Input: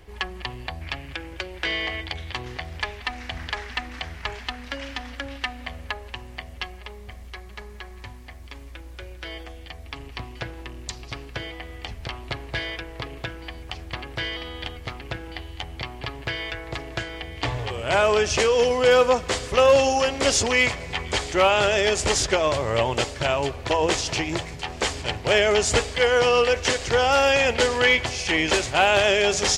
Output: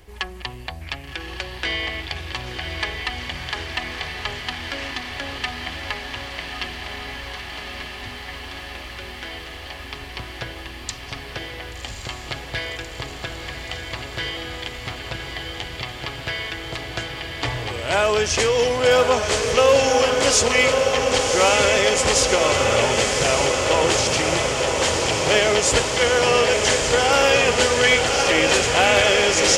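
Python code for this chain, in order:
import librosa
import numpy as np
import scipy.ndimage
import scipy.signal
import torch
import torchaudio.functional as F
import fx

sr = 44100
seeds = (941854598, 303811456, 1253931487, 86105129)

p1 = fx.high_shelf(x, sr, hz=5200.0, db=7.0)
y = p1 + fx.echo_diffused(p1, sr, ms=1125, feedback_pct=78, wet_db=-4.0, dry=0)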